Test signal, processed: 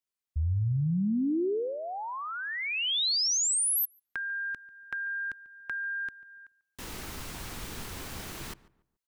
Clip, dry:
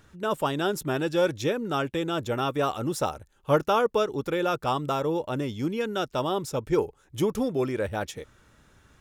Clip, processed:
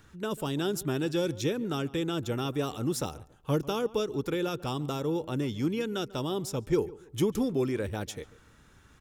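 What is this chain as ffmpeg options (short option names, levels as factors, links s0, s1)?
-filter_complex "[0:a]acrossover=split=490|3000[s0][s1][s2];[s1]acompressor=threshold=0.0141:ratio=6[s3];[s0][s3][s2]amix=inputs=3:normalize=0,equalizer=f=600:w=2.7:g=-5,asplit=2[s4][s5];[s5]adelay=143,lowpass=f=1700:p=1,volume=0.119,asplit=2[s6][s7];[s7]adelay=143,lowpass=f=1700:p=1,volume=0.31,asplit=2[s8][s9];[s9]adelay=143,lowpass=f=1700:p=1,volume=0.31[s10];[s6][s8][s10]amix=inputs=3:normalize=0[s11];[s4][s11]amix=inputs=2:normalize=0"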